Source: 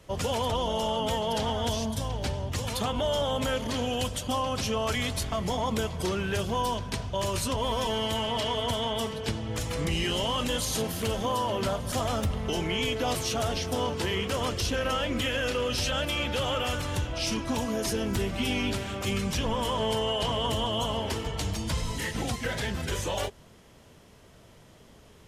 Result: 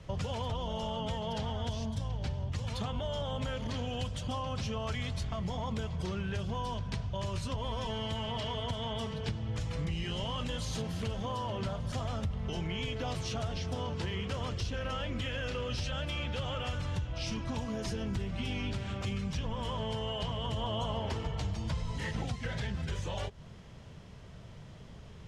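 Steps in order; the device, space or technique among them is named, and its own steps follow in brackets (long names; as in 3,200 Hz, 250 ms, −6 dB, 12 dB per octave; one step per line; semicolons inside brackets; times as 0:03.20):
jukebox (low-pass filter 5,800 Hz 12 dB per octave; low shelf with overshoot 210 Hz +6.5 dB, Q 1.5; downward compressor 3 to 1, threshold −35 dBFS, peak gain reduction 13.5 dB)
0:20.56–0:22.25: parametric band 710 Hz +4.5 dB 2 octaves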